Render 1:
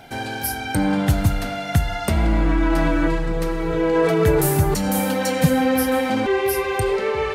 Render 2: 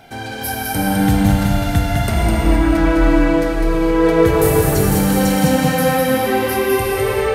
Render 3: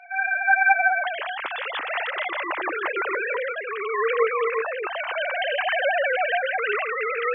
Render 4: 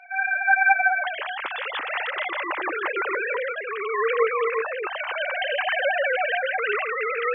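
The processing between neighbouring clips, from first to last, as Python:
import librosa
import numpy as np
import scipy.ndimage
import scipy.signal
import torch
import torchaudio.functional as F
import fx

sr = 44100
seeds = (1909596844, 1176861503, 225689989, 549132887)

y1 = x + 10.0 ** (-4.0 / 20.0) * np.pad(x, (int(205 * sr / 1000.0), 0))[:len(x)]
y1 = fx.rev_gated(y1, sr, seeds[0], gate_ms=490, shape='flat', drr_db=-1.5)
y1 = y1 * 10.0 ** (-1.0 / 20.0)
y2 = fx.sine_speech(y1, sr)
y2 = scipy.signal.sosfilt(scipy.signal.butter(2, 1100.0, 'highpass', fs=sr, output='sos'), y2)
y3 = fx.notch(y2, sr, hz=680.0, q=12.0)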